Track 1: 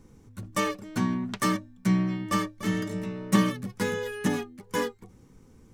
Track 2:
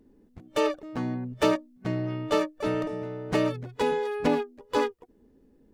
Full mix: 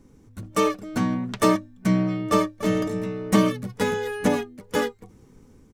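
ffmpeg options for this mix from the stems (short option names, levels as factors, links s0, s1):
-filter_complex "[0:a]volume=0.891[s0];[1:a]lowpass=f=2700:p=1,adelay=1.3,volume=0.841[s1];[s0][s1]amix=inputs=2:normalize=0,dynaudnorm=f=230:g=3:m=1.41"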